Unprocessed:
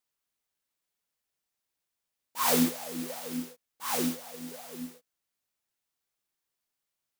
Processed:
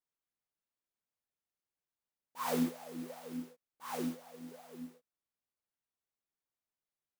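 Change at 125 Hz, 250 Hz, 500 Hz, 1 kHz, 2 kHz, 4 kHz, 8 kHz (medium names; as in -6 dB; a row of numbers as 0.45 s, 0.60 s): -6.0 dB, -6.0 dB, -6.5 dB, -7.5 dB, -10.5 dB, -14.0 dB, -16.0 dB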